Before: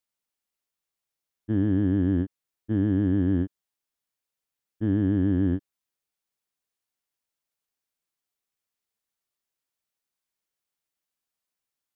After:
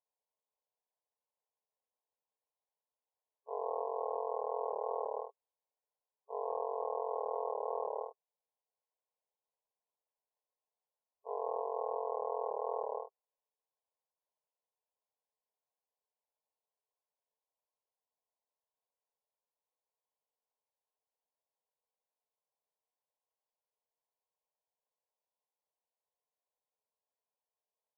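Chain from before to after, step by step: half-waves squared off; brick-wall FIR band-pass 950–2600 Hz; speed mistake 78 rpm record played at 33 rpm; gain -5.5 dB

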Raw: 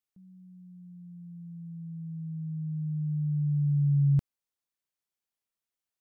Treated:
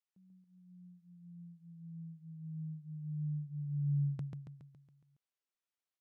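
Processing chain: HPF 320 Hz 6 dB/oct; air absorption 59 m; feedback echo 0.139 s, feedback 53%, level -4 dB; gain -4.5 dB

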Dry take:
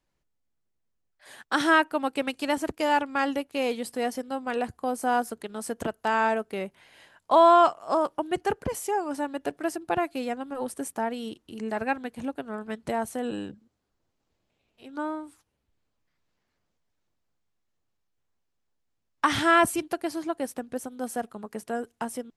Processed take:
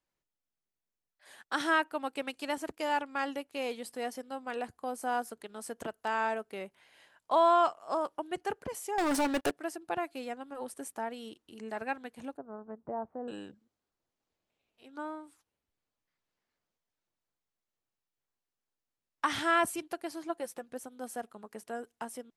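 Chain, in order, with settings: low shelf 220 Hz -9 dB; 8.98–9.51 sample leveller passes 5; 12.37–13.28 LPF 1100 Hz 24 dB/oct; 20.29–20.7 comb 5.8 ms, depth 49%; gain -6.5 dB

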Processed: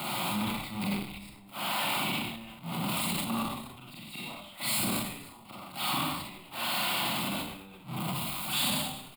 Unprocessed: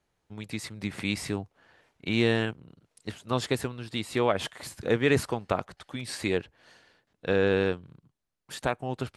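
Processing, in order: zero-crossing step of -30 dBFS; flipped gate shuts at -24 dBFS, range -31 dB; HPF 150 Hz 24 dB/oct; fixed phaser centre 1700 Hz, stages 6; on a send: frequency-shifting echo 0.185 s, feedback 42%, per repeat -71 Hz, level -19.5 dB; on the sum: Schroeder reverb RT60 0.69 s, combs from 31 ms, DRR -4.5 dB; transient shaper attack -3 dB, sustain +10 dB; core saturation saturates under 410 Hz; gain +4 dB

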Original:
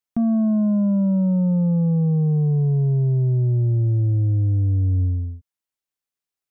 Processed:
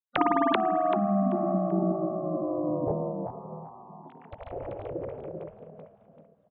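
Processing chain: sine-wave speech; frequency-shifting echo 0.386 s, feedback 34%, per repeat +39 Hz, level -3 dB; spring tank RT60 3 s, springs 50 ms, chirp 75 ms, DRR 14.5 dB; formant shift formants +5 st; spectral gate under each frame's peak -15 dB weak; gain +5 dB

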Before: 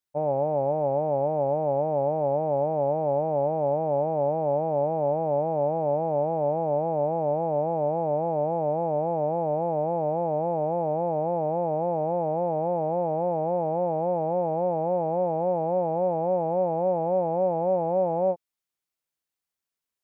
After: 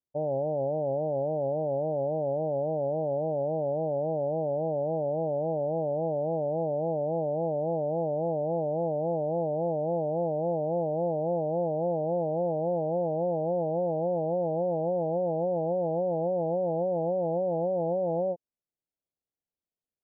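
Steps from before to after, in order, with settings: inverse Chebyshev low-pass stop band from 1800 Hz, stop band 50 dB; limiter -22 dBFS, peak gain reduction 5.5 dB

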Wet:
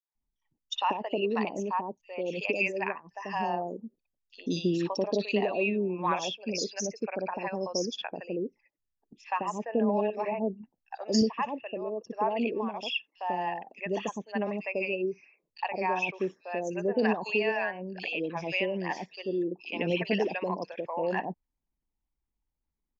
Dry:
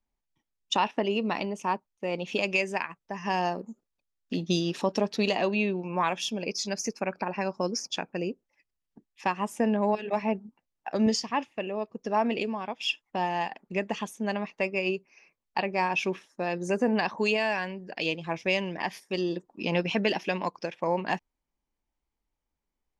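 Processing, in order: formant sharpening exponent 1.5; three bands offset in time highs, mids, lows 60/150 ms, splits 680/3600 Hz; downsampling 16000 Hz

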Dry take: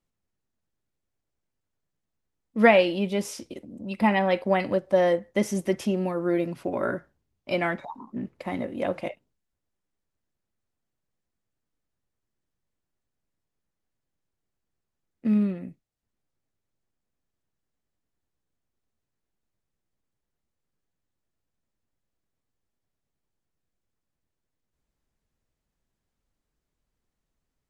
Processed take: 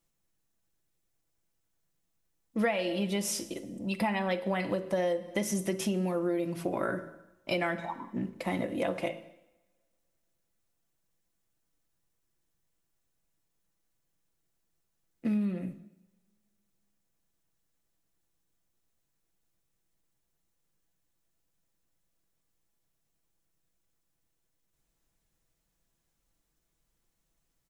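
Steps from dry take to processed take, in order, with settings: high shelf 4900 Hz +9 dB; notch 4700 Hz, Q 24; comb 6 ms, depth 35%; de-hum 54.28 Hz, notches 11; reverb RT60 1.0 s, pre-delay 3 ms, DRR 13.5 dB; compressor 6:1, threshold -28 dBFS, peak gain reduction 16.5 dB; gain +1 dB

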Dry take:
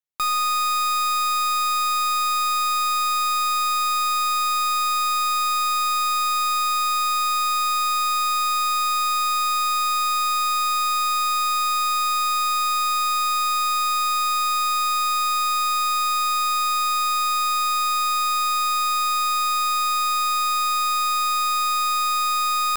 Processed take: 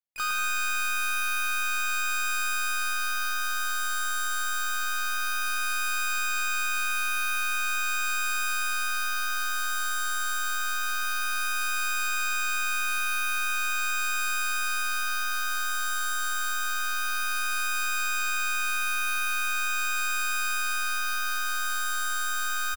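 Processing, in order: harmoniser +3 st -11 dB, +4 st -8 dB, +12 st -9 dB; bouncing-ball echo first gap 0.11 s, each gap 0.7×, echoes 5; overloaded stage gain 12 dB; gain -8 dB

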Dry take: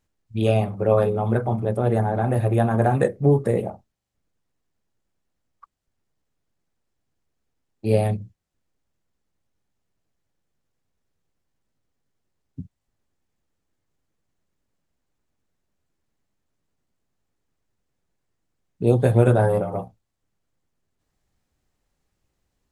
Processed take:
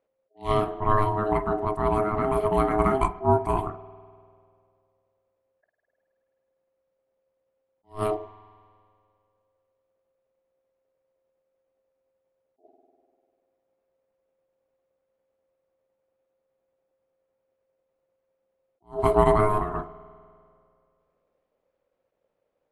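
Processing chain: low-pass opened by the level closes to 2300 Hz, open at -17.5 dBFS; ring modulator 530 Hz; spring tank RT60 2.2 s, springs 49 ms, chirp 30 ms, DRR 18 dB; attack slew limiter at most 250 dB/s

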